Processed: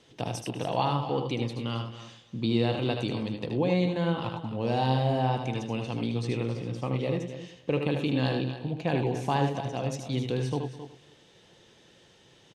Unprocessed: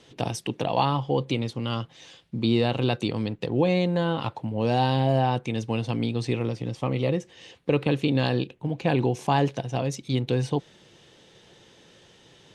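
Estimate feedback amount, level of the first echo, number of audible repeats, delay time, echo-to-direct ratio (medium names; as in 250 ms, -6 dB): no regular repeats, -6.0 dB, 5, 77 ms, -4.0 dB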